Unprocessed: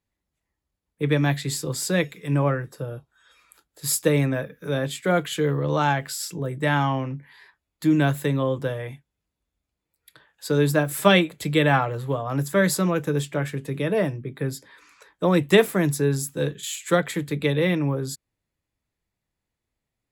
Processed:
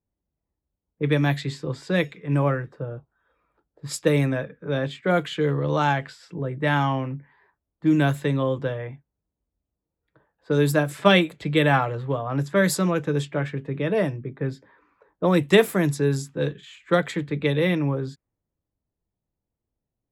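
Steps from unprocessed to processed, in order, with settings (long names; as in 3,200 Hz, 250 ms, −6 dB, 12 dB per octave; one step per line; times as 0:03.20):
low-pass that shuts in the quiet parts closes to 750 Hz, open at −16.5 dBFS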